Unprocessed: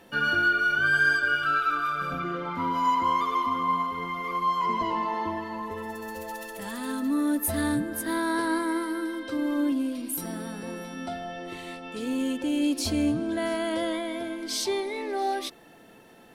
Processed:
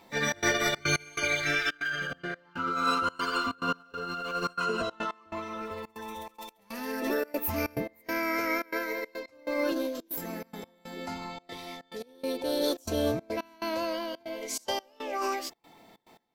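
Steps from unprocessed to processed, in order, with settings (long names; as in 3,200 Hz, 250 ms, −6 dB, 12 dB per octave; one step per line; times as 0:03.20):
formants moved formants +5 semitones
gate pattern "xxx.xxx.x..xx" 141 BPM −24 dB
level −3 dB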